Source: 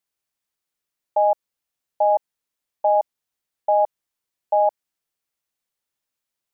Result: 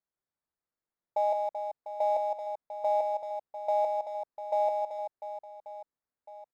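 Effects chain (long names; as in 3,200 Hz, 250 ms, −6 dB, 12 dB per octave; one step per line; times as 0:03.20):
adaptive Wiener filter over 15 samples
brickwall limiter −16 dBFS, peak gain reduction 5 dB
reverse bouncing-ball delay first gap 160 ms, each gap 1.4×, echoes 5
level −4.5 dB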